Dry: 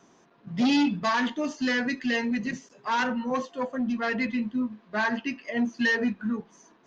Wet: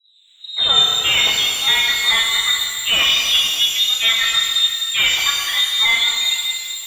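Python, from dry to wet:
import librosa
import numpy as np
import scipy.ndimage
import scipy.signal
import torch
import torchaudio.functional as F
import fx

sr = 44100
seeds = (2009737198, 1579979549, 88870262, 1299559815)

p1 = fx.tape_start_head(x, sr, length_s=0.64)
p2 = fx.rider(p1, sr, range_db=10, speed_s=0.5)
p3 = p1 + F.gain(torch.from_numpy(p2), 3.0).numpy()
p4 = fx.freq_invert(p3, sr, carrier_hz=3900)
y = fx.rev_shimmer(p4, sr, seeds[0], rt60_s=2.3, semitones=12, shimmer_db=-8, drr_db=-0.5)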